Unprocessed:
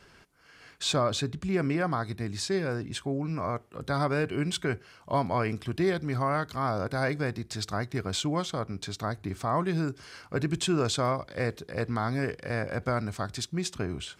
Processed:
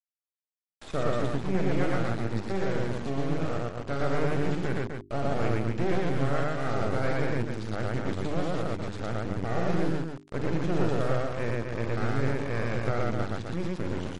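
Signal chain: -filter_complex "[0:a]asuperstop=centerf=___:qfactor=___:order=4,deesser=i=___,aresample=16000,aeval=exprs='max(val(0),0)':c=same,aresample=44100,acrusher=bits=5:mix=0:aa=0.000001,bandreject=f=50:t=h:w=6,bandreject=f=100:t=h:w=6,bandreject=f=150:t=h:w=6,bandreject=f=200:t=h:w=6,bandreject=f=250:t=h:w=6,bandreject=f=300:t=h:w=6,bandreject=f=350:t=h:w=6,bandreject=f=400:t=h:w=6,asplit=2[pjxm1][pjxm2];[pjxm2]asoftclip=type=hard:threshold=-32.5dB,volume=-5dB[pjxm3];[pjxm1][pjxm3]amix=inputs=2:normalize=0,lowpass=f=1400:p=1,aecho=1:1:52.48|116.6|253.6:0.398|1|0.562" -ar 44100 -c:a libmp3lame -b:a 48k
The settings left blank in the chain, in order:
990, 3.2, 0.9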